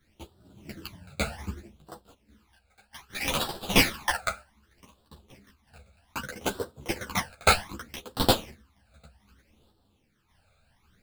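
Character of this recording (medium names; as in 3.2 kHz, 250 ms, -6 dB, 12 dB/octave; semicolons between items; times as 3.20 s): aliases and images of a low sample rate 7.5 kHz, jitter 20%; phasing stages 12, 0.64 Hz, lowest notch 310–2200 Hz; random-step tremolo; a shimmering, thickened sound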